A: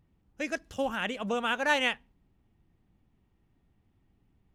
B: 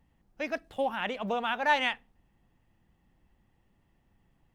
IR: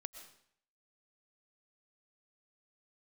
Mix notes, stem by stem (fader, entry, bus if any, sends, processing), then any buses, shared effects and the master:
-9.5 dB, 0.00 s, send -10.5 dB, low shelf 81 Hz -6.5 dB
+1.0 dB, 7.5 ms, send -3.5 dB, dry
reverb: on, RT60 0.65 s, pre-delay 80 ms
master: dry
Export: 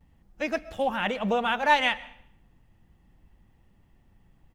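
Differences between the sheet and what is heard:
stem B: polarity flipped; master: extra low shelf 140 Hz +6.5 dB

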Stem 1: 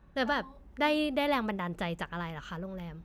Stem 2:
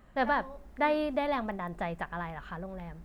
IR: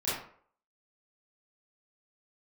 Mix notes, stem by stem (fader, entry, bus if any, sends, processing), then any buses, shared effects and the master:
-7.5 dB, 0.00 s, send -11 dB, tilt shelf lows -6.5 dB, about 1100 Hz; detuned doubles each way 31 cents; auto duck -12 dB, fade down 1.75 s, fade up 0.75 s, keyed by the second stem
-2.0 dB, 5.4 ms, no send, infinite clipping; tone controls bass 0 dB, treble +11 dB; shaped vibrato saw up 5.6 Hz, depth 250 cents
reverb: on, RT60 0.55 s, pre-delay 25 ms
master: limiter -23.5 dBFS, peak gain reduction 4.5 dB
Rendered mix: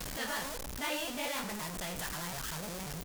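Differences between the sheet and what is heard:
stem 2 -2.0 dB -> -9.0 dB; master: missing limiter -23.5 dBFS, peak gain reduction 4.5 dB

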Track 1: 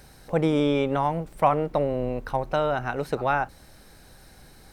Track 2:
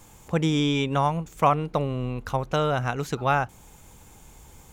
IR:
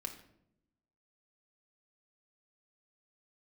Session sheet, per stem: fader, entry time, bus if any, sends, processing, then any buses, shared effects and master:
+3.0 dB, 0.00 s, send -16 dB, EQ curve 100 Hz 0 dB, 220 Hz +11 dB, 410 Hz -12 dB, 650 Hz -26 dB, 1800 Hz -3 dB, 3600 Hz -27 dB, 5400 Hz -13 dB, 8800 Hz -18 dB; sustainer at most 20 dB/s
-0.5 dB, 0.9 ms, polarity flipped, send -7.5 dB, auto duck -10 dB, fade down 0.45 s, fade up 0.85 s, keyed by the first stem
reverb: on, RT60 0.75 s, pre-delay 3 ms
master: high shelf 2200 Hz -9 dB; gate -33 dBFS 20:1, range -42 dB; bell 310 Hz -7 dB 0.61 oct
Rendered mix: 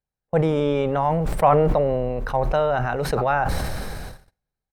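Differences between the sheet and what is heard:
stem 1: missing EQ curve 100 Hz 0 dB, 220 Hz +11 dB, 410 Hz -12 dB, 650 Hz -26 dB, 1800 Hz -3 dB, 3600 Hz -27 dB, 5400 Hz -13 dB, 8800 Hz -18 dB; stem 2 -0.5 dB -> -8.0 dB

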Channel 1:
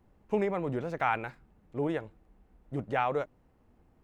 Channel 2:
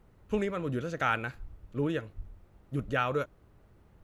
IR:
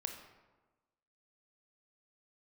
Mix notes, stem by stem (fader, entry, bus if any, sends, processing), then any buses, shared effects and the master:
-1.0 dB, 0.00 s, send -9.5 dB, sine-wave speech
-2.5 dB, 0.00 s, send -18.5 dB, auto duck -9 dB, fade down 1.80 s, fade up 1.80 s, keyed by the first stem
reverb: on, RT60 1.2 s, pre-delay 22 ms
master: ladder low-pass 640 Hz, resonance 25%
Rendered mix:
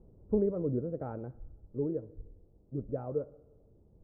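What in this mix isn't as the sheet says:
stem 1 -1.0 dB -> -11.0 dB; stem 2 -2.5 dB -> +8.0 dB

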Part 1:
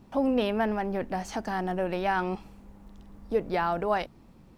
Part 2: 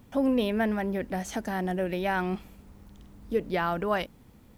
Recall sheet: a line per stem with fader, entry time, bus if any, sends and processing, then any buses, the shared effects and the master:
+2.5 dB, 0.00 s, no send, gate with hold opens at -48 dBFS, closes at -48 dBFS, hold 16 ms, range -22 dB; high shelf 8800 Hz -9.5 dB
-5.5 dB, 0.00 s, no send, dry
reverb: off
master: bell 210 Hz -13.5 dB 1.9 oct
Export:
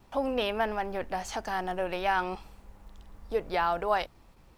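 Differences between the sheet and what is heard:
stem 1: missing high shelf 8800 Hz -9.5 dB; stem 2 -5.5 dB -> -14.0 dB

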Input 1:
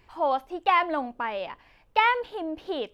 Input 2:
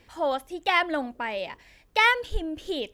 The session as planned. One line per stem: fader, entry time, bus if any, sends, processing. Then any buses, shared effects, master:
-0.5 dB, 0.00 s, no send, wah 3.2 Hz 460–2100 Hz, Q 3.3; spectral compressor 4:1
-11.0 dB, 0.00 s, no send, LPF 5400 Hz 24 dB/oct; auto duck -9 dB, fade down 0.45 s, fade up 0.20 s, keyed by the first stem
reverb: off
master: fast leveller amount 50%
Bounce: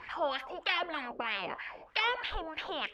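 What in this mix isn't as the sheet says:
stem 2 -11.0 dB -> -3.0 dB; master: missing fast leveller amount 50%

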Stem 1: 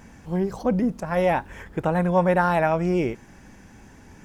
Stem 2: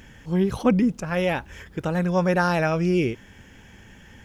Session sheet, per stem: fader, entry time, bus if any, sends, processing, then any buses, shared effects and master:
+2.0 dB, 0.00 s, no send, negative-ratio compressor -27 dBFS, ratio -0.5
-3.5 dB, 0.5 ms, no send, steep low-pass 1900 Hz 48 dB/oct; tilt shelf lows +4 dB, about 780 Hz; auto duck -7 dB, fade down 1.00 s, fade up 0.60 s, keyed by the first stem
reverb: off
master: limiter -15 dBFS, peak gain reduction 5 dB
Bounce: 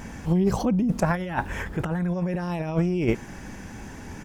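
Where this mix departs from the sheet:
stem 2: missing steep low-pass 1900 Hz 48 dB/oct; master: missing limiter -15 dBFS, peak gain reduction 5 dB

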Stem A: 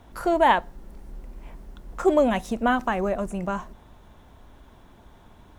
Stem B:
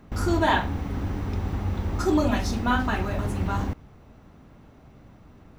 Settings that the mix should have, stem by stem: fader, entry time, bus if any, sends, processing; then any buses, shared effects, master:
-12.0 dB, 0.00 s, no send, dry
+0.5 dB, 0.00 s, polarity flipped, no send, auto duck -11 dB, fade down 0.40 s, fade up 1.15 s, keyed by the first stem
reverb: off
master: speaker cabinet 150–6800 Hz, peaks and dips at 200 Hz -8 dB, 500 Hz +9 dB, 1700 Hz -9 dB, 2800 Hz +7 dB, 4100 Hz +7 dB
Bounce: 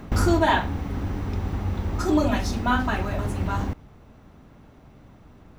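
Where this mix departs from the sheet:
stem B +0.5 dB -> +11.5 dB; master: missing speaker cabinet 150–6800 Hz, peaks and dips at 200 Hz -8 dB, 500 Hz +9 dB, 1700 Hz -9 dB, 2800 Hz +7 dB, 4100 Hz +7 dB

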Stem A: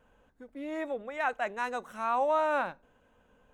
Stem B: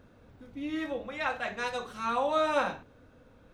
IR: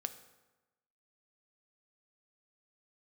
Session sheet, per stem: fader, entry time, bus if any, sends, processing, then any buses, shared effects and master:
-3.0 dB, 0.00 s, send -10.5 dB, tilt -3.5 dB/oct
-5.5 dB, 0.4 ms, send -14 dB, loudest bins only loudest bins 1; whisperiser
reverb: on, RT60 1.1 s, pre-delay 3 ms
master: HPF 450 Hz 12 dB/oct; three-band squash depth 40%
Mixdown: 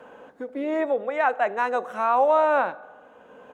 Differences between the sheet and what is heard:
stem A -3.0 dB -> +4.5 dB; reverb return +7.5 dB

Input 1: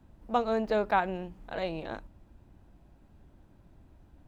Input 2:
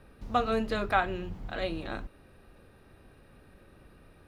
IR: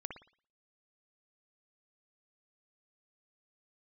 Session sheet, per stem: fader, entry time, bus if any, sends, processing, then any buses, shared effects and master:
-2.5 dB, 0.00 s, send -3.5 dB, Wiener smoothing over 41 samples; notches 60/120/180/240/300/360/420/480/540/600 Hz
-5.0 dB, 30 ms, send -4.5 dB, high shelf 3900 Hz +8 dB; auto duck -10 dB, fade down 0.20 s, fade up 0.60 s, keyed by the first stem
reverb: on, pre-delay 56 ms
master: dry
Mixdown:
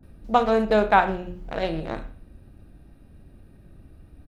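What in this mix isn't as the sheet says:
stem 1 -2.5 dB -> +6.0 dB; stem 2: polarity flipped

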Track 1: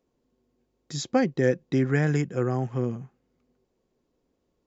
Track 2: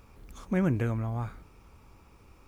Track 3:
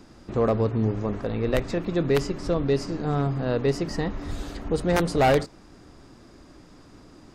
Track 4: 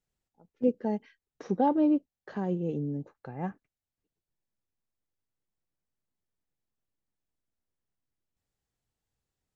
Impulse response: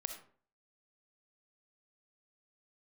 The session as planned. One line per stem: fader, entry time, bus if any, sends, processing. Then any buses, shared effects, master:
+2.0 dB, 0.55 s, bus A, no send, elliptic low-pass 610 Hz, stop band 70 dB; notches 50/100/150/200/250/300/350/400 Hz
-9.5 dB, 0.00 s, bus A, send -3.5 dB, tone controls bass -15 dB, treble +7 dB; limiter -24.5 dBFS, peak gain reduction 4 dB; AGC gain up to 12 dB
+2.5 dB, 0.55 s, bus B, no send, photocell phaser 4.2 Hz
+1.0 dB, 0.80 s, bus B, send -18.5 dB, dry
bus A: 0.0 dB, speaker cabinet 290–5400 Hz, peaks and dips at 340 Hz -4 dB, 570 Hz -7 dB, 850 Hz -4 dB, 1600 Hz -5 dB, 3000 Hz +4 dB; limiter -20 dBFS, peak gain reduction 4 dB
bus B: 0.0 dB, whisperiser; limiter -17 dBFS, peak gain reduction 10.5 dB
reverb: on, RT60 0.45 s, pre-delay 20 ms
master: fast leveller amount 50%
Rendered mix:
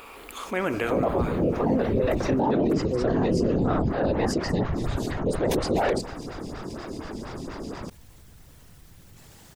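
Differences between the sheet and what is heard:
stem 2: missing limiter -24.5 dBFS, peak gain reduction 4 dB; stem 4 +1.0 dB -> +8.0 dB

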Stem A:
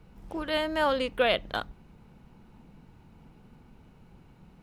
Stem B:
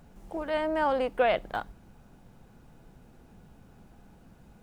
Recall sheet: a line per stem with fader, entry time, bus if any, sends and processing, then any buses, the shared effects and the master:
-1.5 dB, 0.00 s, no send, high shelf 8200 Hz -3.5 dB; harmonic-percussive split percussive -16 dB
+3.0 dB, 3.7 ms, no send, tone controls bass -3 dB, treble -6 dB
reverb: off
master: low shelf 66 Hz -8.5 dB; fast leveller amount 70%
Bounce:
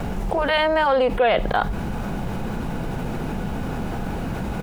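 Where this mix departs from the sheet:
stem B: polarity flipped; master: missing low shelf 66 Hz -8.5 dB

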